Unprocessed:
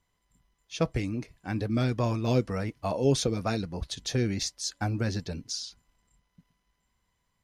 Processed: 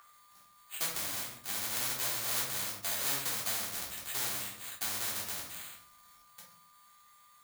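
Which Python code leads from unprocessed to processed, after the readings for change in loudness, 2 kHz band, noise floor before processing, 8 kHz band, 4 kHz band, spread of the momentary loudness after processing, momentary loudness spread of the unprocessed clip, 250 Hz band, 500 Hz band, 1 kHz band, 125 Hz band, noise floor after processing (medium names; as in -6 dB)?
-3.5 dB, 0.0 dB, -77 dBFS, +3.5 dB, -1.0 dB, 9 LU, 9 LU, -22.0 dB, -18.0 dB, -6.0 dB, -23.5 dB, -62 dBFS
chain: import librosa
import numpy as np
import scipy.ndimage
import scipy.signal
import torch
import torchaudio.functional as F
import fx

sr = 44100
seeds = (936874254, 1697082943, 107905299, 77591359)

y = fx.halfwave_hold(x, sr)
y = scipy.signal.sosfilt(scipy.signal.butter(2, 2900.0, 'lowpass', fs=sr, output='sos'), y)
y = fx.peak_eq(y, sr, hz=350.0, db=-8.5, octaves=1.1)
y = fx.hum_notches(y, sr, base_hz=50, count=3)
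y = np.repeat(scipy.signal.resample_poly(y, 1, 8), 8)[:len(y)]
y = y + 10.0 ** (-50.0 / 20.0) * np.sin(2.0 * np.pi * 1200.0 * np.arange(len(y)) / sr)
y = np.diff(y, prepend=0.0)
y = fx.room_shoebox(y, sr, seeds[0], volume_m3=310.0, walls='furnished', distance_m=3.4)
y = fx.spectral_comp(y, sr, ratio=2.0)
y = y * librosa.db_to_amplitude(-2.0)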